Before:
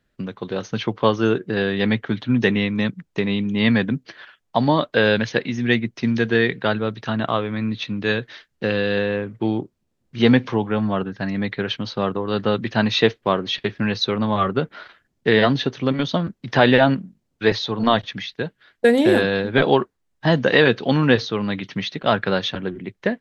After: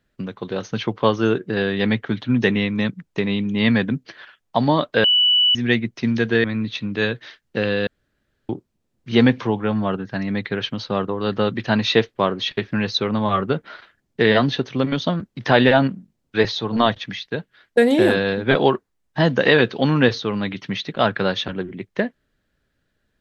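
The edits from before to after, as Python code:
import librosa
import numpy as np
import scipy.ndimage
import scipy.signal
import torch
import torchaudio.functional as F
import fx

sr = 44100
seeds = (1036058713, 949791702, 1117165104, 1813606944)

y = fx.edit(x, sr, fx.bleep(start_s=5.04, length_s=0.51, hz=2960.0, db=-12.5),
    fx.cut(start_s=6.44, length_s=1.07),
    fx.room_tone_fill(start_s=8.94, length_s=0.62), tone=tone)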